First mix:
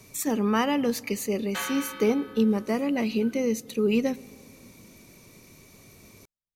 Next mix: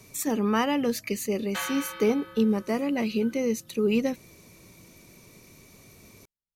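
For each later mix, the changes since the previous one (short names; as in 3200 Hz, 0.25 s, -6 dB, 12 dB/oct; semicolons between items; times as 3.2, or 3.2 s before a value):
reverb: off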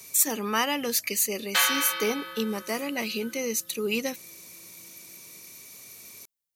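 background +6.0 dB; master: add tilt +3.5 dB/oct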